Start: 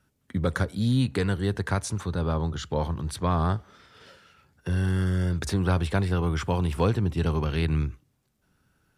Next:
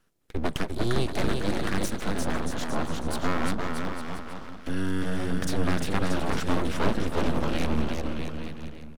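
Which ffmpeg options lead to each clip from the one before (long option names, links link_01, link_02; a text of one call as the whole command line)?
ffmpeg -i in.wav -af "aecho=1:1:350|630|854|1033|1177:0.631|0.398|0.251|0.158|0.1,aeval=exprs='abs(val(0))':channel_layout=same" out.wav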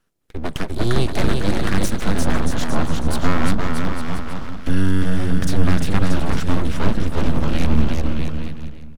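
ffmpeg -i in.wav -af "asubboost=boost=2:cutoff=250,dynaudnorm=framelen=110:gausssize=11:maxgain=11.5dB,volume=-1dB" out.wav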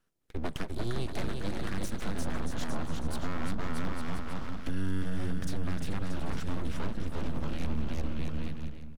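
ffmpeg -i in.wav -af "alimiter=limit=-13dB:level=0:latency=1:release=478,volume=-7dB" out.wav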